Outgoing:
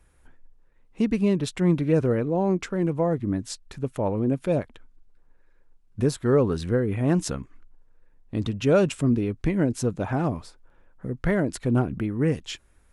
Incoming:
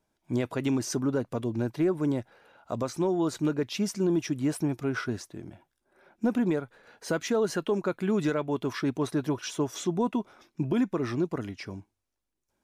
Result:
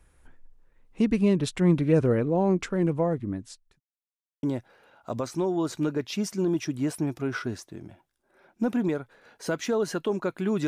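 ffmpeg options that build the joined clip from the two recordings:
-filter_complex "[0:a]apad=whole_dur=10.67,atrim=end=10.67,asplit=2[a][b];[a]atrim=end=3.8,asetpts=PTS-STARTPTS,afade=t=out:st=2.88:d=0.92[c];[b]atrim=start=3.8:end=4.43,asetpts=PTS-STARTPTS,volume=0[d];[1:a]atrim=start=2.05:end=8.29,asetpts=PTS-STARTPTS,afade=t=in:d=0.004:c=hsin[e];[c][d][e]concat=n=3:v=0:a=1"

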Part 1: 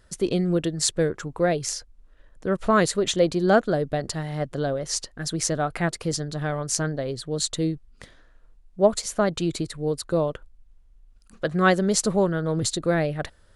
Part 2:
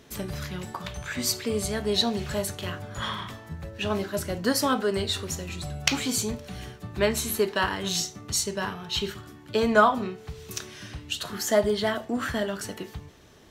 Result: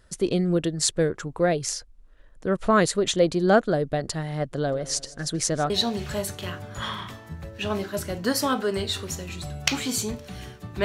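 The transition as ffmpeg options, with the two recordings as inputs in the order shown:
-filter_complex "[0:a]asplit=3[a][b][c];[a]afade=t=out:st=4.65:d=0.02[d];[b]aecho=1:1:157|314|471|628:0.119|0.063|0.0334|0.0177,afade=t=in:st=4.65:d=0.02,afade=t=out:st=5.7:d=0.02[e];[c]afade=t=in:st=5.7:d=0.02[f];[d][e][f]amix=inputs=3:normalize=0,apad=whole_dur=10.84,atrim=end=10.84,atrim=end=5.702[g];[1:a]atrim=start=1.898:end=7.04[h];[g][h]acrossfade=d=0.004:c1=hsin:c2=hsin"

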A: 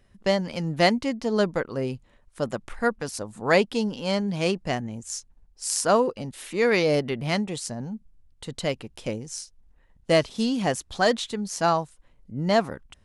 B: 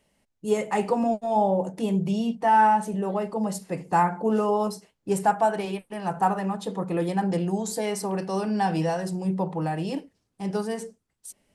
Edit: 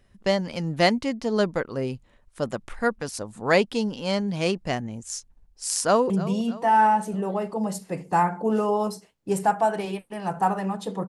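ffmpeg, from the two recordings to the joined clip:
-filter_complex "[0:a]apad=whole_dur=11.08,atrim=end=11.08,atrim=end=6.102[a];[1:a]atrim=start=1.898:end=6.88[b];[a][b]acrossfade=d=0.004:c1=hsin:c2=hsin,asplit=2[c][d];[d]afade=t=in:st=5.82:d=0.01,afade=t=out:st=6.1:d=0.01,aecho=0:1:310|620|930|1240|1550:0.16788|0.0839402|0.0419701|0.0209851|0.0104925[e];[c][e]amix=inputs=2:normalize=0"

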